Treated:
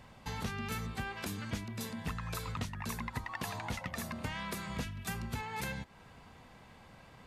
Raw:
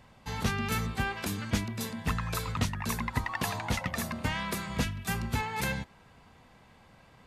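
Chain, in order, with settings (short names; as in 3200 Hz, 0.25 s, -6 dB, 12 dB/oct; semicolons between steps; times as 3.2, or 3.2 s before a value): compressor 2.5:1, threshold -41 dBFS, peak gain reduction 12.5 dB; gain +1.5 dB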